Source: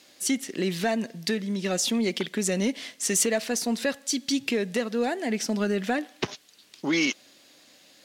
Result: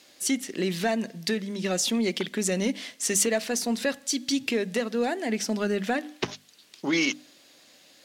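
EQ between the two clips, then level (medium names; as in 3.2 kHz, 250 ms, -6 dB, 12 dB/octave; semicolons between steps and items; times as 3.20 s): hum notches 50/100/150/200/250/300 Hz; 0.0 dB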